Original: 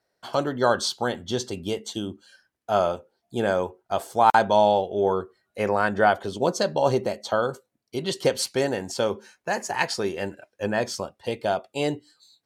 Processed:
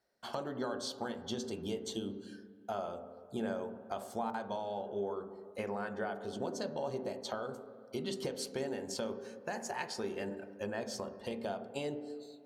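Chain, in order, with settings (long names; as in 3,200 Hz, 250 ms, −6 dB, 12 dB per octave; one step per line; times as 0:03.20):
downward compressor 6 to 1, threshold −31 dBFS, peak gain reduction 18 dB
on a send: convolution reverb RT60 2.1 s, pre-delay 3 ms, DRR 8 dB
on the sum: level −5.5 dB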